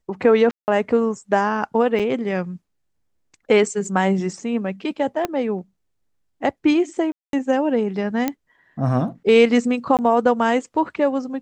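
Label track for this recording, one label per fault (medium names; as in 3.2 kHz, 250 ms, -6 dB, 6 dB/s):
0.510000	0.680000	dropout 169 ms
1.990000	2.000000	dropout 6.6 ms
5.250000	5.250000	pop -9 dBFS
7.120000	7.330000	dropout 212 ms
8.280000	8.280000	pop -8 dBFS
9.970000	9.990000	dropout 18 ms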